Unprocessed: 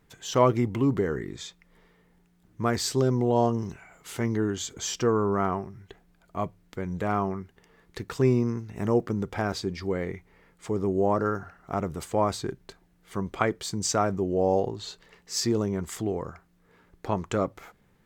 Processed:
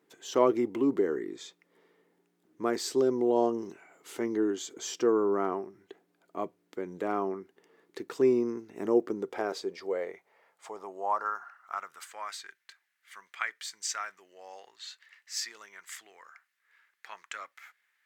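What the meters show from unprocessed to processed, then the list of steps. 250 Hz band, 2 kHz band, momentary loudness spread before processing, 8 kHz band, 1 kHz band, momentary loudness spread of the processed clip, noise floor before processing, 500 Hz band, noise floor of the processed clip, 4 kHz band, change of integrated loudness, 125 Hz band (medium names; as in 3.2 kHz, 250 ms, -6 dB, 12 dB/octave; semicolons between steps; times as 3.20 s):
-4.5 dB, -3.0 dB, 15 LU, -5.5 dB, -5.0 dB, 19 LU, -64 dBFS, -2.5 dB, -76 dBFS, -5.5 dB, -3.5 dB, -21.5 dB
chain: high-pass sweep 330 Hz -> 1.8 kHz, 9.06–12.41 s; trim -6 dB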